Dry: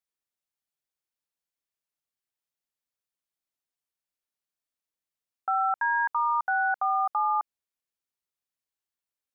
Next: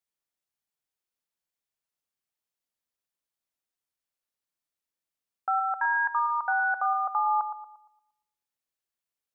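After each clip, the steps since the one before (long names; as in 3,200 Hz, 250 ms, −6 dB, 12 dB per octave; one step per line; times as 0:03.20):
bucket-brigade delay 116 ms, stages 1,024, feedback 39%, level −9 dB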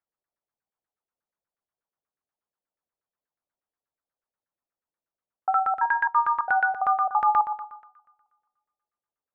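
delay with a high-pass on its return 213 ms, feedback 40%, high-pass 1,600 Hz, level −12 dB
auto-filter low-pass saw down 8.3 Hz 470–1,700 Hz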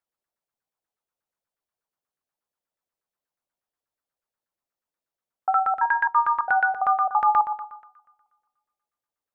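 mains-hum notches 50/100/150/200/250/300/350/400/450 Hz
level +1.5 dB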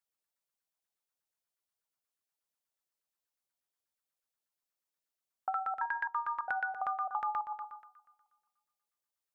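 high-shelf EQ 2,100 Hz +10 dB
downward compressor 6 to 1, threshold −23 dBFS, peak gain reduction 10 dB
level −8.5 dB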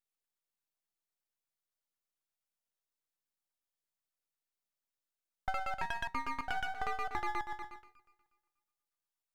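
dynamic equaliser 670 Hz, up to +4 dB, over −50 dBFS, Q 1.5
half-wave rectification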